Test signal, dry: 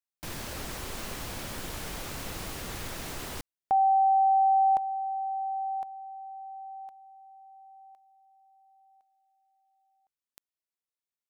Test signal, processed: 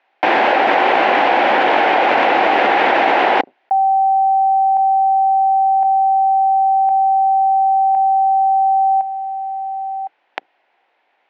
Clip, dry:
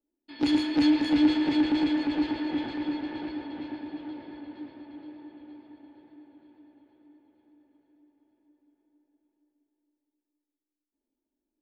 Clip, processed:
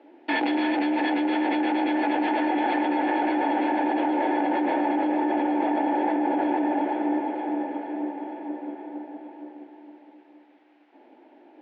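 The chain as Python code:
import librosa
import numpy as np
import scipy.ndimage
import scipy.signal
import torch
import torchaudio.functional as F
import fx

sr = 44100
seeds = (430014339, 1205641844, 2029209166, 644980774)

y = fx.octave_divider(x, sr, octaves=2, level_db=2.0)
y = fx.cabinet(y, sr, low_hz=350.0, low_slope=24, high_hz=2500.0, hz=(420.0, 780.0, 1200.0), db=(-4, 10, -7))
y = fx.env_flatten(y, sr, amount_pct=100)
y = F.gain(torch.from_numpy(y), -1.0).numpy()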